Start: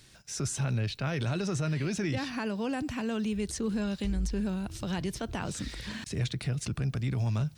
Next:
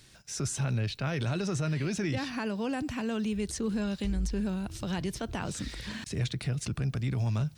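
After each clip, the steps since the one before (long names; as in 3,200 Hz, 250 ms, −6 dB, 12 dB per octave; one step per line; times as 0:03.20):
no processing that can be heard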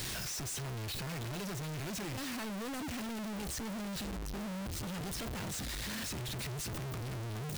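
sign of each sample alone
level −7.5 dB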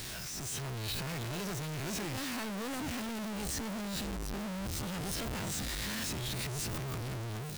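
peak hold with a rise ahead of every peak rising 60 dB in 0.39 s
automatic gain control gain up to 5.5 dB
level −4.5 dB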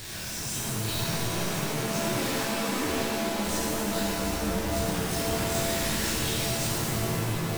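reverb with rising layers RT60 2.1 s, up +7 semitones, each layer −2 dB, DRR −5 dB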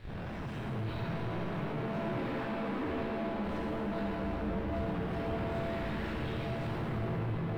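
in parallel at −4 dB: comparator with hysteresis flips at −31.5 dBFS
on the sum: high-frequency loss of the air 490 metres
level −8 dB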